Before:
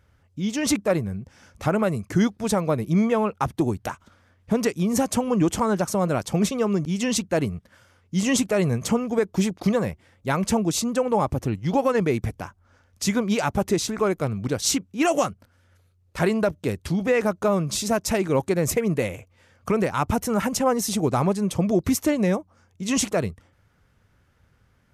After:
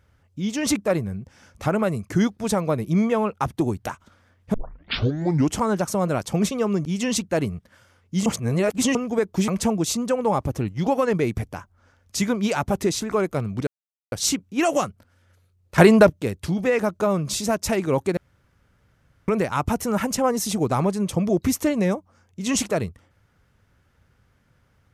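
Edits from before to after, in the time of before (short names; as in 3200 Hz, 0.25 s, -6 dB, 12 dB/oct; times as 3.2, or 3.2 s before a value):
4.54 tape start 1.03 s
8.26–8.95 reverse
9.48–10.35 cut
14.54 insert silence 0.45 s
16.2–16.52 gain +9 dB
18.59–19.7 room tone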